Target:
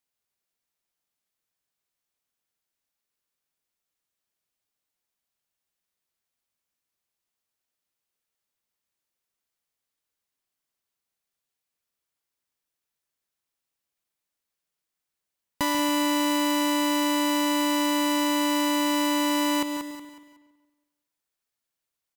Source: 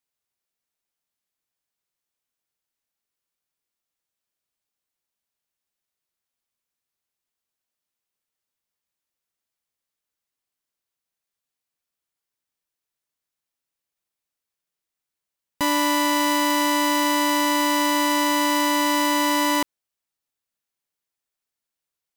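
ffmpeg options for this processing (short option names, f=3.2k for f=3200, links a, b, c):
-filter_complex "[0:a]asplit=2[a][b];[b]aecho=0:1:184|368|552|736:0.266|0.0905|0.0308|0.0105[c];[a][c]amix=inputs=2:normalize=0,acompressor=threshold=-25dB:ratio=2,asplit=2[d][e];[e]adelay=140,lowpass=f=4k:p=1,volume=-11dB,asplit=2[f][g];[g]adelay=140,lowpass=f=4k:p=1,volume=0.52,asplit=2[h][i];[i]adelay=140,lowpass=f=4k:p=1,volume=0.52,asplit=2[j][k];[k]adelay=140,lowpass=f=4k:p=1,volume=0.52,asplit=2[l][m];[m]adelay=140,lowpass=f=4k:p=1,volume=0.52,asplit=2[n][o];[o]adelay=140,lowpass=f=4k:p=1,volume=0.52[p];[f][h][j][l][n][p]amix=inputs=6:normalize=0[q];[d][q]amix=inputs=2:normalize=0"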